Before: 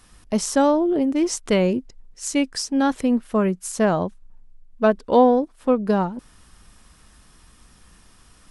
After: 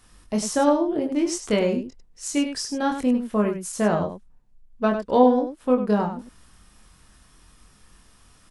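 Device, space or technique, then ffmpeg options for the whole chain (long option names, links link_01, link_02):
slapback doubling: -filter_complex "[0:a]asplit=3[link_01][link_02][link_03];[link_02]adelay=24,volume=-4dB[link_04];[link_03]adelay=99,volume=-8.5dB[link_05];[link_01][link_04][link_05]amix=inputs=3:normalize=0,volume=-4dB"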